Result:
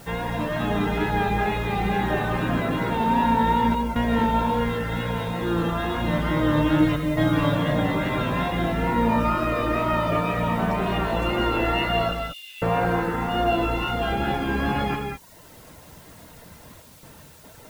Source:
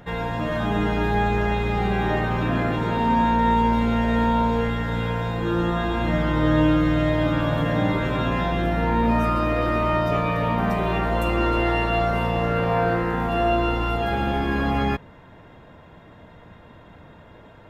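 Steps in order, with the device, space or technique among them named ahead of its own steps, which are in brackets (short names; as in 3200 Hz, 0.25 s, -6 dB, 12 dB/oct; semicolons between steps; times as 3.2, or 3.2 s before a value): 12.11–12.62 steep high-pass 2800 Hz 36 dB/oct; worn cassette (LPF 6100 Hz; wow and flutter 47 cents; level dips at 3.75/6.96/16.82/17.23, 0.206 s -9 dB; white noise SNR 28 dB); reverb removal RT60 0.92 s; 6.79–7.56 comb 6.9 ms, depth 74%; non-linear reverb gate 0.23 s rising, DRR 4 dB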